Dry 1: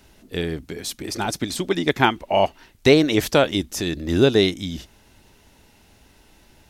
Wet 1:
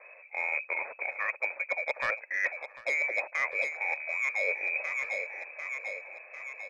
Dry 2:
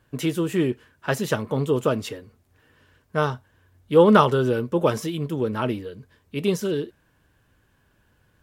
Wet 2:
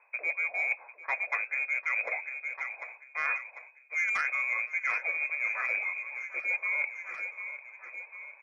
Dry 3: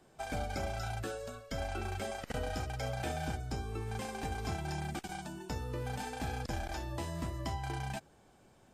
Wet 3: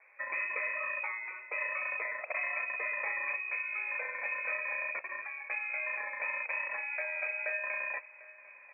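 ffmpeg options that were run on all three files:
ffmpeg -i in.wav -filter_complex "[0:a]asplit=2[link_01][link_02];[link_02]aeval=exprs='val(0)*gte(abs(val(0)),0.0501)':channel_layout=same,volume=-7.5dB[link_03];[link_01][link_03]amix=inputs=2:normalize=0,lowpass=frequency=2200:width_type=q:width=0.5098,lowpass=frequency=2200:width_type=q:width=0.6013,lowpass=frequency=2200:width_type=q:width=0.9,lowpass=frequency=2200:width_type=q:width=2.563,afreqshift=-2600,highpass=frequency=560:width_type=q:width=5.8,asoftclip=type=tanh:threshold=-3.5dB,aecho=1:1:747|1494|2241|2988:0.1|0.055|0.0303|0.0166,areverse,acompressor=threshold=-29dB:ratio=10,areverse,volume=1dB" out.wav

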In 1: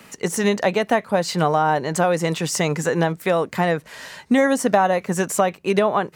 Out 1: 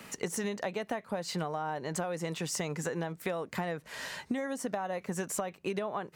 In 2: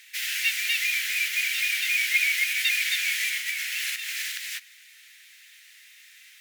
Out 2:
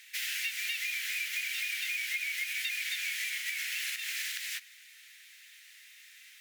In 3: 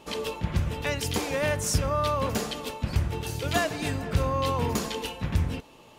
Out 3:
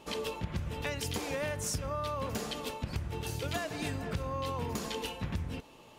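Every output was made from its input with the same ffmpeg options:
ffmpeg -i in.wav -af "acompressor=threshold=-28dB:ratio=10,volume=-3dB" out.wav

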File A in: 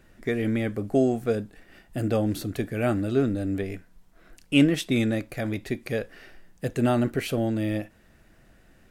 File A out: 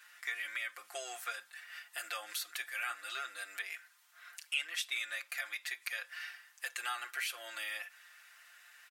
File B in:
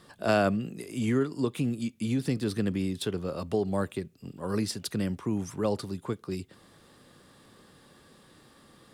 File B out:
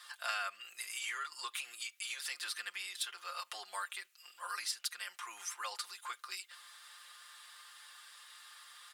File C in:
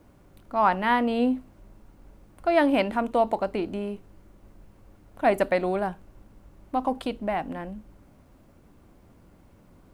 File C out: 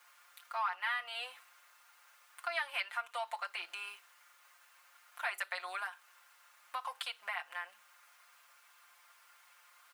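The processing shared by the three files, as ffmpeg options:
ffmpeg -i in.wav -af "highpass=frequency=1200:width=0.5412,highpass=frequency=1200:width=1.3066,aecho=1:1:5.7:0.94,acompressor=threshold=-43dB:ratio=2.5,volume=4dB" out.wav

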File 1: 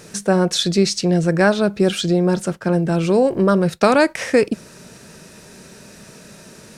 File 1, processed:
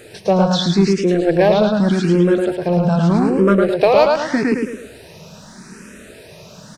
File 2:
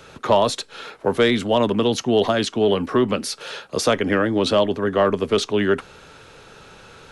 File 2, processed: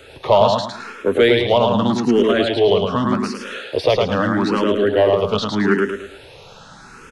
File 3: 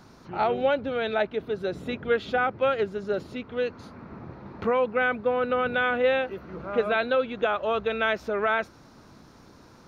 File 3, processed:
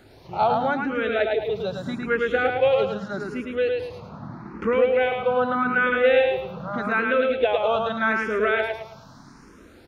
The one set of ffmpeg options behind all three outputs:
ffmpeg -i in.wav -filter_complex "[0:a]acrossover=split=4500[link_01][link_02];[link_02]acompressor=threshold=-50dB:ratio=4:attack=1:release=60[link_03];[link_01][link_03]amix=inputs=2:normalize=0,aecho=1:1:108|216|324|432|540:0.668|0.261|0.102|0.0396|0.0155,asplit=2[link_04][link_05];[link_05]aeval=exprs='0.251*(abs(mod(val(0)/0.251+3,4)-2)-1)':channel_layout=same,volume=-11dB[link_06];[link_04][link_06]amix=inputs=2:normalize=0,asplit=2[link_07][link_08];[link_08]afreqshift=0.82[link_09];[link_07][link_09]amix=inputs=2:normalize=1,volume=2.5dB" out.wav

